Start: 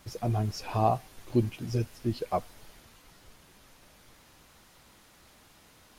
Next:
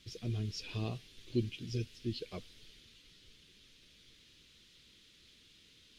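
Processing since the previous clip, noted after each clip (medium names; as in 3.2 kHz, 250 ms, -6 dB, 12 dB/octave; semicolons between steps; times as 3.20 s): FFT filter 440 Hz 0 dB, 770 Hz -20 dB, 3.4 kHz +12 dB, 13 kHz -10 dB; trim -7.5 dB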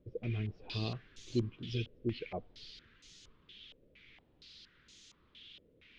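step-sequenced low-pass 4.3 Hz 530–6700 Hz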